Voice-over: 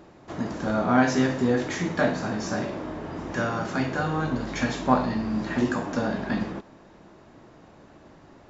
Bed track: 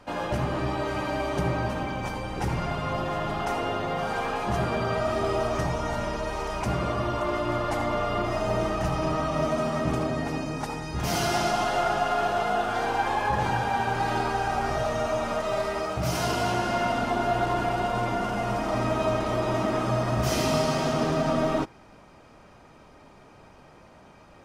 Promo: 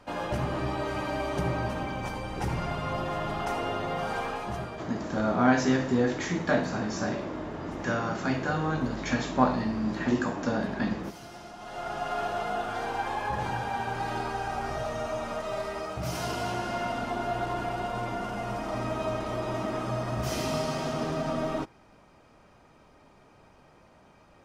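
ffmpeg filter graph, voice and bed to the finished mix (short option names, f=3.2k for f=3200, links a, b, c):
-filter_complex "[0:a]adelay=4500,volume=-2dB[a];[1:a]volume=12.5dB,afade=t=out:st=4.16:d=0.75:silence=0.125893,afade=t=in:st=11.58:d=0.59:silence=0.177828[b];[a][b]amix=inputs=2:normalize=0"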